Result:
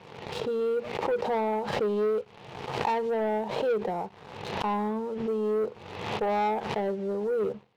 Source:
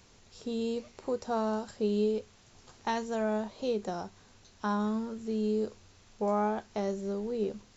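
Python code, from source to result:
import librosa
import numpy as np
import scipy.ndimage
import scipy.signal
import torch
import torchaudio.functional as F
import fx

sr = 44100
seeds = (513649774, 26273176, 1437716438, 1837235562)

y = fx.cabinet(x, sr, low_hz=120.0, low_slope=24, high_hz=3200.0, hz=(140.0, 250.0, 470.0, 860.0, 1500.0), db=(6, -8, 8, 8, -6))
y = fx.leveller(y, sr, passes=2)
y = fx.pre_swell(y, sr, db_per_s=49.0)
y = F.gain(torch.from_numpy(y), -5.0).numpy()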